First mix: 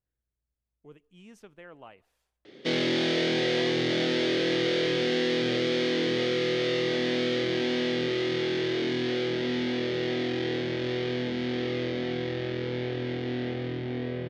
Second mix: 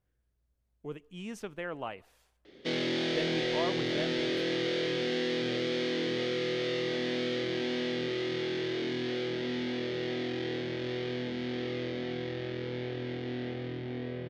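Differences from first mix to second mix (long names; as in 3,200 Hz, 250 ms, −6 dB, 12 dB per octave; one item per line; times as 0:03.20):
speech +10.0 dB
background −5.0 dB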